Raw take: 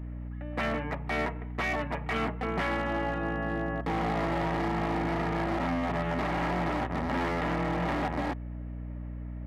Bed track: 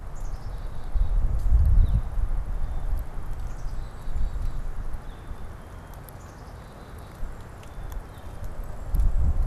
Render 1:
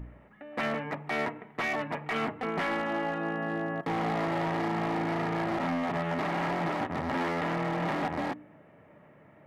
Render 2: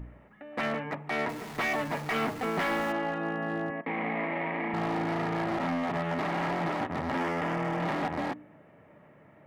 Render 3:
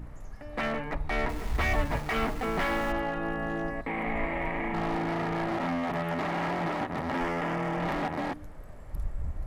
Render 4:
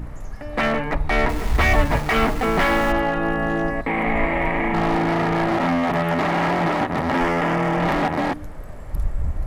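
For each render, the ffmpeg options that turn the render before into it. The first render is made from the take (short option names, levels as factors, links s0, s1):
-af "bandreject=f=60:t=h:w=4,bandreject=f=120:t=h:w=4,bandreject=f=180:t=h:w=4,bandreject=f=240:t=h:w=4,bandreject=f=300:t=h:w=4"
-filter_complex "[0:a]asettb=1/sr,asplit=3[s0][s1][s2];[s0]atrim=end=1.294[s3];[s1]atrim=start=1.29:end=2.92,asetpts=PTS-STARTPTS,afade=t=in:d=0.004:c=qsin,afade=t=out:st=1.626:d=0.004:c=qsin,aeval=exprs='val(0)+0.5*0.0133*sgn(val(0))':c=same[s4];[s2]atrim=start=2.916[s5];[s3][s4]acrossfade=d=0.004:c1=hsin:c2=qsin[s6];[s6][s5]acrossfade=d=0.004:c1=qsin:c2=hsin,asettb=1/sr,asplit=3[s7][s8][s9];[s7]atrim=end=3.704[s10];[s8]atrim=start=3.7:end=4.74,asetpts=PTS-STARTPTS,afade=t=in:d=0.004:c=qsin,afade=t=out:st=1.036:d=0.004:c=qsin,highpass=f=200:w=0.5412,highpass=f=200:w=1.3066,equalizer=f=220:t=q:w=4:g=4,equalizer=f=370:t=q:w=4:g=-7,equalizer=f=770:t=q:w=4:g=-4,equalizer=f=1400:t=q:w=4:g=-9,equalizer=f=2200:t=q:w=4:g=10,lowpass=f=2600:w=0.5412,lowpass=f=2600:w=1.3066[s11];[s9]atrim=start=4.736[s12];[s10][s11]acrossfade=d=0.004:c1=hsin:c2=qsin[s13];[s13][s12]acrossfade=d=0.004:c1=qsin:c2=hsin,asettb=1/sr,asplit=3[s14][s15][s16];[s14]atrim=end=7.184[s17];[s15]atrim=start=7.18:end=7.8,asetpts=PTS-STARTPTS,afade=t=in:d=0.004:c=qsin,afade=t=out:st=0.616:d=0.004:c=qsin,equalizer=f=4000:t=o:w=0.3:g=-9.5[s18];[s16]atrim=start=7.796[s19];[s17][s18]acrossfade=d=0.004:c1=hsin:c2=qsin[s20];[s20][s19]acrossfade=d=0.004:c1=qsin:c2=hsin"
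-filter_complex "[1:a]volume=0.282[s0];[0:a][s0]amix=inputs=2:normalize=0"
-af "volume=3.16"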